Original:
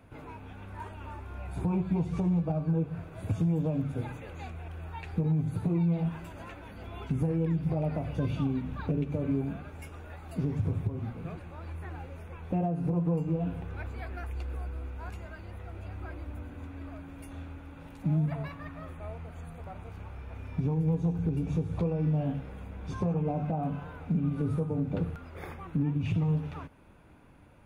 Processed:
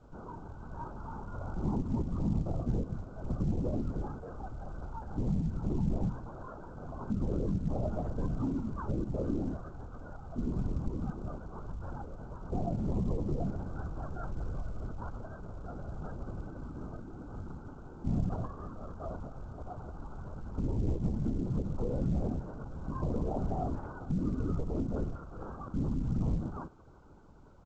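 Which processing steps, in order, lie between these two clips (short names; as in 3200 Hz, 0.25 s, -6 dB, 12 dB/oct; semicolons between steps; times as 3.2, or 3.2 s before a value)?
steep low-pass 1500 Hz 96 dB/oct; limiter -25 dBFS, peak gain reduction 4.5 dB; speakerphone echo 0.22 s, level -21 dB; LPC vocoder at 8 kHz whisper; µ-law 128 kbps 16000 Hz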